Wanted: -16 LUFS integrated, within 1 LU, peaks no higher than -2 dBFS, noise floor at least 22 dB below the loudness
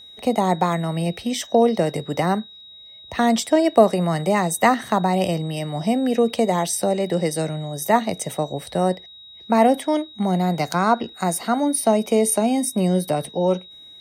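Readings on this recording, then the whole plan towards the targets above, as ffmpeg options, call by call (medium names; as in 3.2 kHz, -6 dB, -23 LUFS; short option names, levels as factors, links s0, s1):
steady tone 3.8 kHz; tone level -41 dBFS; loudness -21.0 LUFS; peak level -2.0 dBFS; loudness target -16.0 LUFS
-> -af "bandreject=f=3800:w=30"
-af "volume=1.78,alimiter=limit=0.794:level=0:latency=1"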